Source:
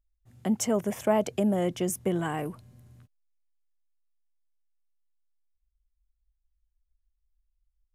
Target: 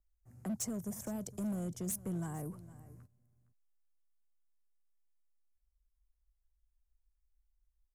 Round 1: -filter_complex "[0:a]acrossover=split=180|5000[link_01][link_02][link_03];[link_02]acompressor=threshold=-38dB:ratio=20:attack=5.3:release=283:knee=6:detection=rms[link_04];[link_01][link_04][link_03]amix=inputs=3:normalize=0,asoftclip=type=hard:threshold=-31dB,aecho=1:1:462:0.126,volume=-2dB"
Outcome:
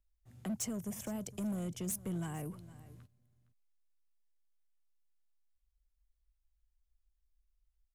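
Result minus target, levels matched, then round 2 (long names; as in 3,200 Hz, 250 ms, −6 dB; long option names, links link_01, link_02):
2,000 Hz band +3.5 dB
-filter_complex "[0:a]acrossover=split=180|5000[link_01][link_02][link_03];[link_02]acompressor=threshold=-38dB:ratio=20:attack=5.3:release=283:knee=6:detection=rms,lowpass=1600[link_04];[link_01][link_04][link_03]amix=inputs=3:normalize=0,asoftclip=type=hard:threshold=-31dB,aecho=1:1:462:0.126,volume=-2dB"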